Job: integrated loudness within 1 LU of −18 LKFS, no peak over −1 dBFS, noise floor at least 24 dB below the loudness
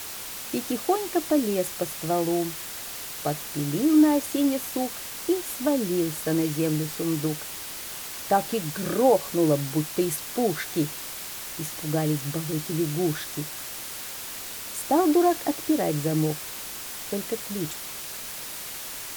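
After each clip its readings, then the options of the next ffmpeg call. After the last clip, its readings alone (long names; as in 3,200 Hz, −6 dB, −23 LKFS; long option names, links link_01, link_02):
background noise floor −37 dBFS; target noise floor −51 dBFS; integrated loudness −26.5 LKFS; sample peak −9.0 dBFS; target loudness −18.0 LKFS
→ -af "afftdn=noise_reduction=14:noise_floor=-37"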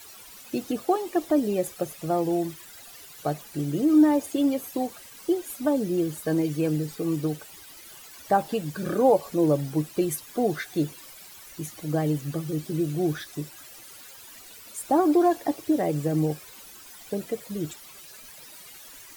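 background noise floor −47 dBFS; target noise floor −50 dBFS
→ -af "afftdn=noise_reduction=6:noise_floor=-47"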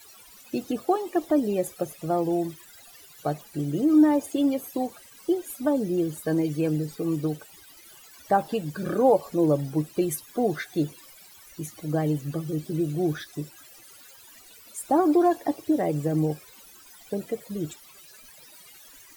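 background noise floor −51 dBFS; integrated loudness −26.0 LKFS; sample peak −9.5 dBFS; target loudness −18.0 LKFS
→ -af "volume=8dB"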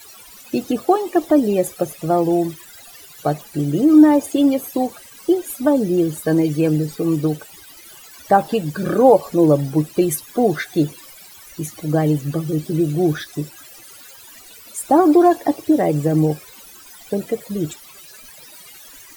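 integrated loudness −18.0 LKFS; sample peak −1.5 dBFS; background noise floor −43 dBFS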